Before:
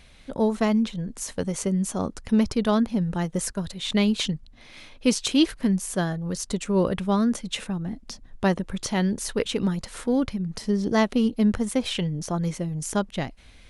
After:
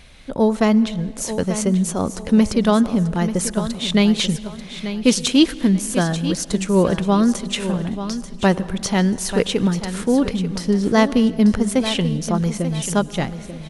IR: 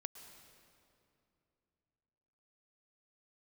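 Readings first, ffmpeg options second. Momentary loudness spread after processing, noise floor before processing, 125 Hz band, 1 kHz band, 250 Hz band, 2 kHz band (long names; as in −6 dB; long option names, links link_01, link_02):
8 LU, −49 dBFS, +6.5 dB, +6.0 dB, +6.5 dB, +6.0 dB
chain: -filter_complex "[0:a]aecho=1:1:888|1776|2664:0.282|0.0789|0.0221,asplit=2[link_01][link_02];[1:a]atrim=start_sample=2205,asetrate=48510,aresample=44100[link_03];[link_02][link_03]afir=irnorm=-1:irlink=0,volume=-3dB[link_04];[link_01][link_04]amix=inputs=2:normalize=0,volume=3dB"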